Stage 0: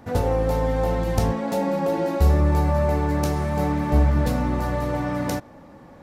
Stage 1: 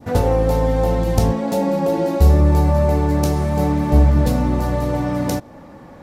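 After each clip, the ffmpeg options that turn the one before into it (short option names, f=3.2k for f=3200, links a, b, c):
-af "adynamicequalizer=threshold=0.00891:dfrequency=1600:dqfactor=0.78:tfrequency=1600:tqfactor=0.78:attack=5:release=100:ratio=0.375:range=3:mode=cutabove:tftype=bell,volume=5.5dB"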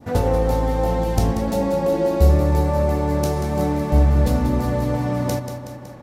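-af "aecho=1:1:186|372|558|744|930|1116|1302:0.355|0.209|0.124|0.0729|0.043|0.0254|0.015,volume=-2.5dB"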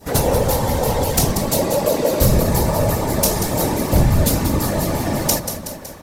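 -af "afftfilt=real='hypot(re,im)*cos(2*PI*random(0))':imag='hypot(re,im)*sin(2*PI*random(1))':win_size=512:overlap=0.75,crystalizer=i=5.5:c=0,aeval=exprs='0.237*(abs(mod(val(0)/0.237+3,4)-2)-1)':c=same,volume=6.5dB"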